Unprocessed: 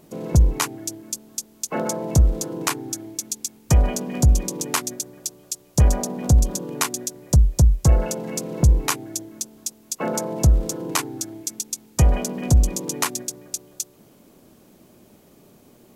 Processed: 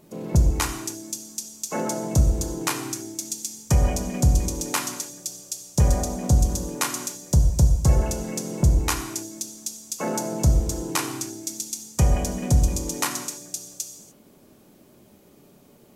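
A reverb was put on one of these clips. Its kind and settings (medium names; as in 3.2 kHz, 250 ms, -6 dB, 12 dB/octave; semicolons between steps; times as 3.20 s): gated-style reverb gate 320 ms falling, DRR 4 dB; trim -3 dB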